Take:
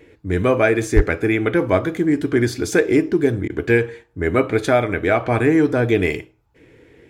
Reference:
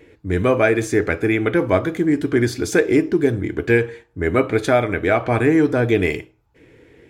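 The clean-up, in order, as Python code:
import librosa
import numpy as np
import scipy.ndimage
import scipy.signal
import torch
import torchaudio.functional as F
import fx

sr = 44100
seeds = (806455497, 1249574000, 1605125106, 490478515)

y = fx.fix_declip(x, sr, threshold_db=-4.0)
y = fx.highpass(y, sr, hz=140.0, slope=24, at=(0.95, 1.07), fade=0.02)
y = fx.fix_interpolate(y, sr, at_s=(3.48,), length_ms=18.0)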